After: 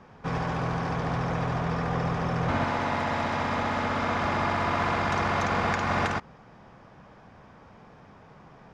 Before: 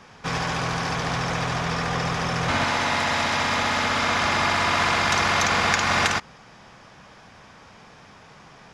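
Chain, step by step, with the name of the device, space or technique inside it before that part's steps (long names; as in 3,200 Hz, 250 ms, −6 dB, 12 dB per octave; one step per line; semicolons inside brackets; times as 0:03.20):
through cloth (high-shelf EQ 1,900 Hz −17 dB)
high-shelf EQ 9,400 Hz −3.5 dB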